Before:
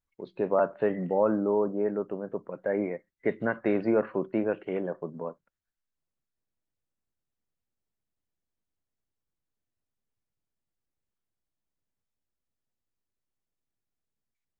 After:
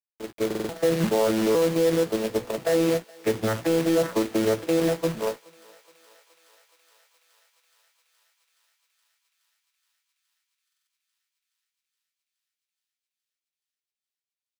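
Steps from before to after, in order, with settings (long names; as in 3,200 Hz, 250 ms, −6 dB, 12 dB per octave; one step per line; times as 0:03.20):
vocoder with an arpeggio as carrier bare fifth, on A2, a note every 513 ms
low-shelf EQ 290 Hz −8.5 dB
mains-hum notches 60/120/180/240/300/360 Hz
brickwall limiter −29 dBFS, peak gain reduction 10.5 dB
automatic gain control gain up to 5 dB
log-companded quantiser 4 bits
double-tracking delay 16 ms −9 dB
on a send: feedback echo with a high-pass in the loop 421 ms, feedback 82%, high-pass 620 Hz, level −23 dB
on the sum: buffer that repeats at 0:00.46/0:10.64, samples 2,048, times 4
level +8.5 dB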